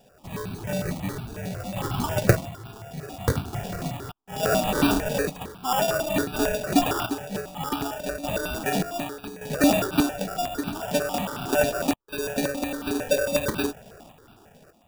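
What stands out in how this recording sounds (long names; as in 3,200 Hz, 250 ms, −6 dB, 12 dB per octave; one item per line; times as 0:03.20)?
sample-and-hold tremolo 1.7 Hz, depth 80%
aliases and images of a low sample rate 2,100 Hz, jitter 0%
notches that jump at a steady rate 11 Hz 330–1,900 Hz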